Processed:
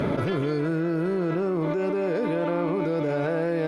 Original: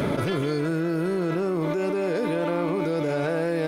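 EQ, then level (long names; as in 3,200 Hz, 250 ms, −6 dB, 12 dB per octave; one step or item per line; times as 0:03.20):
low-pass filter 2,500 Hz 6 dB per octave
0.0 dB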